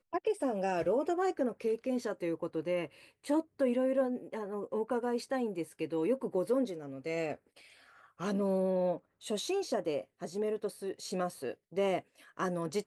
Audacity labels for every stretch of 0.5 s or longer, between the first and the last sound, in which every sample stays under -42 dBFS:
7.350000	8.200000	silence